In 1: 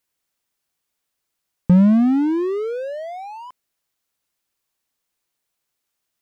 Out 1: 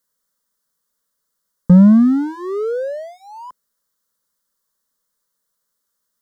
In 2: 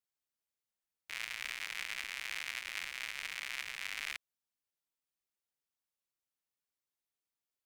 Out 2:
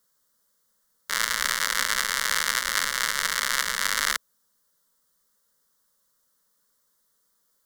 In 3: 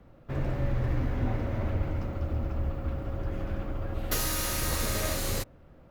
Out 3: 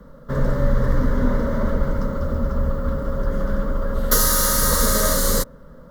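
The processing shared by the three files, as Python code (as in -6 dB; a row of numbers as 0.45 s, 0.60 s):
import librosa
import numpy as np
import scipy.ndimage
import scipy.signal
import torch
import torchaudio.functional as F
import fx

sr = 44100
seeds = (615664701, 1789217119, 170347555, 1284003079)

y = fx.fixed_phaser(x, sr, hz=500.0, stages=8)
y = librosa.util.normalize(y) * 10.0 ** (-2 / 20.0)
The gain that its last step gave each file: +5.0 dB, +23.0 dB, +14.0 dB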